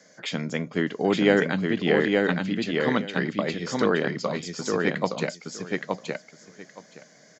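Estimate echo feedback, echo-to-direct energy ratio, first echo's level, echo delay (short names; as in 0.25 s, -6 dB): 16%, -3.0 dB, -3.0 dB, 0.869 s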